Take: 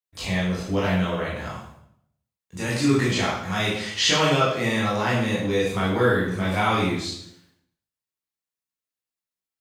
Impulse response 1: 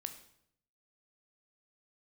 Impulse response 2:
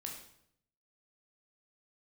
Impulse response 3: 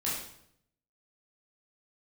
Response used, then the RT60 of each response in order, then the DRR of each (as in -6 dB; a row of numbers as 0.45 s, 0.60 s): 3; 0.70 s, 0.70 s, 0.70 s; 7.0 dB, 0.0 dB, -7.5 dB